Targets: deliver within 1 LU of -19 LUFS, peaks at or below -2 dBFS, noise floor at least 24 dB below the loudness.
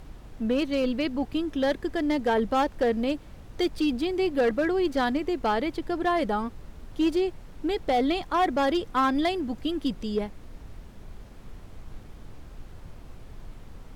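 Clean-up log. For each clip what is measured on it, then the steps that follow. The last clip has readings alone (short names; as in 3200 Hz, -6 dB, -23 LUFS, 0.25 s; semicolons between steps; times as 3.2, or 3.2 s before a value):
clipped 1.1%; flat tops at -18.0 dBFS; noise floor -46 dBFS; noise floor target -51 dBFS; loudness -27.0 LUFS; peak -18.0 dBFS; loudness target -19.0 LUFS
-> clip repair -18 dBFS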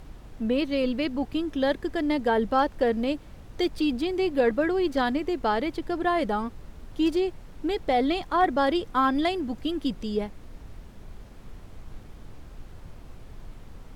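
clipped 0.0%; noise floor -46 dBFS; noise floor target -51 dBFS
-> noise print and reduce 6 dB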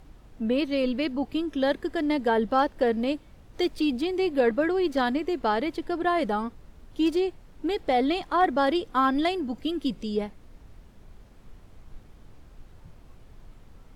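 noise floor -52 dBFS; loudness -26.5 LUFS; peak -11.0 dBFS; loudness target -19.0 LUFS
-> gain +7.5 dB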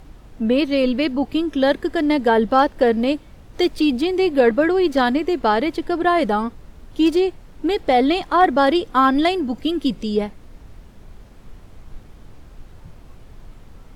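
loudness -19.0 LUFS; peak -3.5 dBFS; noise floor -44 dBFS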